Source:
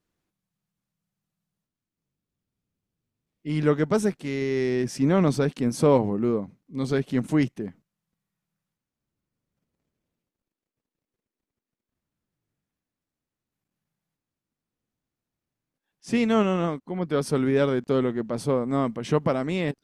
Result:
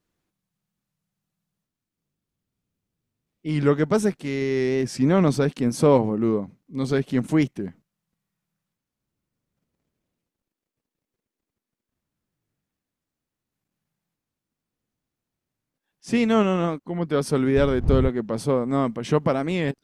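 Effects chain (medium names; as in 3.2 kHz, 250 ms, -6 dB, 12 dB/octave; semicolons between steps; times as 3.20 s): 17.56–18.08 s: wind noise 94 Hz -26 dBFS; warped record 45 rpm, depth 100 cents; trim +2 dB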